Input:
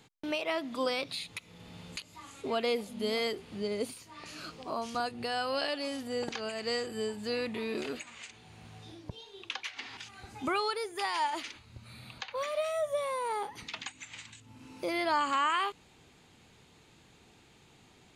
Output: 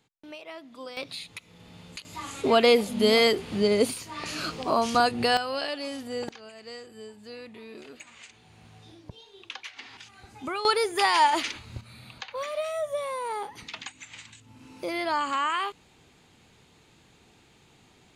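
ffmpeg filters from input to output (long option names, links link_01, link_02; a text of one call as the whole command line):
ffmpeg -i in.wav -af "asetnsamples=nb_out_samples=441:pad=0,asendcmd='0.97 volume volume 0dB;2.05 volume volume 11.5dB;5.37 volume volume 1.5dB;6.29 volume volume -9dB;8 volume volume -1.5dB;10.65 volume volume 10.5dB;11.81 volume volume 1.5dB',volume=-9.5dB" out.wav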